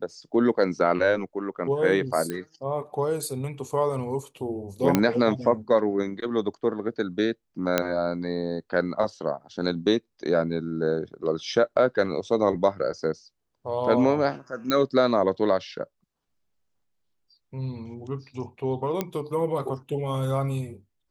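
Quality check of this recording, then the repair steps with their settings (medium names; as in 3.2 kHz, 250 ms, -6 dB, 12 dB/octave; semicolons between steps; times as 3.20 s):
2.30 s: pop -17 dBFS
4.95 s: pop -6 dBFS
7.78 s: pop -6 dBFS
14.70 s: pop -11 dBFS
19.01 s: pop -12 dBFS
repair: de-click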